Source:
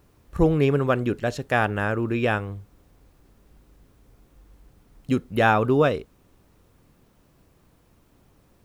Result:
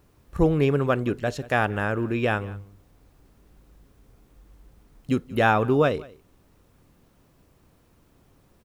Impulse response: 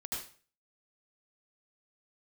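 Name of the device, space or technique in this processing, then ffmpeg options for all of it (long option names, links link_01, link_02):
ducked delay: -filter_complex "[0:a]asplit=3[link_01][link_02][link_03];[link_02]adelay=181,volume=-8dB[link_04];[link_03]apad=whole_len=389057[link_05];[link_04][link_05]sidechaincompress=threshold=-37dB:ratio=4:attack=42:release=615[link_06];[link_01][link_06]amix=inputs=2:normalize=0,volume=-1dB"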